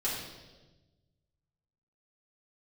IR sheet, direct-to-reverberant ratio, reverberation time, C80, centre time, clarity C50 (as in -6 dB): -8.5 dB, 1.2 s, 4.0 dB, 63 ms, 1.5 dB